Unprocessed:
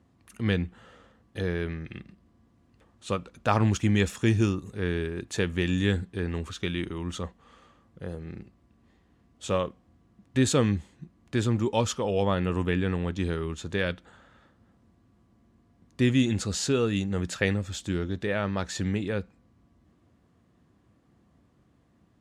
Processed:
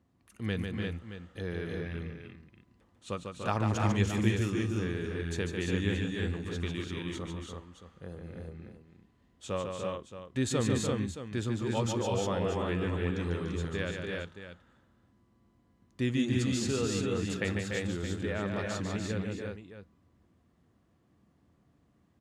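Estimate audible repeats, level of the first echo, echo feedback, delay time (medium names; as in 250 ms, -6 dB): 4, -5.5 dB, no regular repeats, 147 ms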